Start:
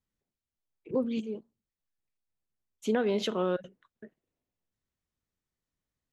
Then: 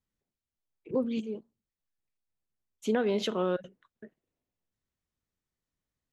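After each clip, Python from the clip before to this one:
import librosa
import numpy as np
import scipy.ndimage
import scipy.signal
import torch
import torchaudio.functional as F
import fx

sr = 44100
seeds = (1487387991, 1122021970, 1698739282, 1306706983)

y = x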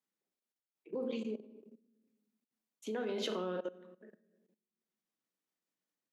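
y = fx.room_shoebox(x, sr, seeds[0], volume_m3=370.0, walls='mixed', distance_m=0.64)
y = fx.level_steps(y, sr, step_db=18)
y = scipy.signal.sosfilt(scipy.signal.butter(4, 210.0, 'highpass', fs=sr, output='sos'), y)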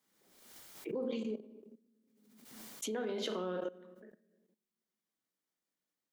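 y = fx.rider(x, sr, range_db=10, speed_s=0.5)
y = fx.notch(y, sr, hz=2600.0, q=14.0)
y = fx.pre_swell(y, sr, db_per_s=48.0)
y = y * librosa.db_to_amplitude(1.5)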